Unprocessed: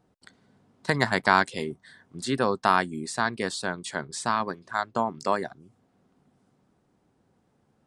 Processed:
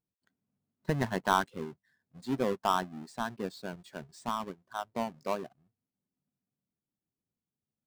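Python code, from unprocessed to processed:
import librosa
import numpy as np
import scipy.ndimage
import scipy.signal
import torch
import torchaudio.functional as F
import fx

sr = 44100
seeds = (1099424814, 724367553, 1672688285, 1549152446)

y = fx.halfwave_hold(x, sr)
y = fx.spectral_expand(y, sr, expansion=1.5)
y = F.gain(torch.from_numpy(y), -8.0).numpy()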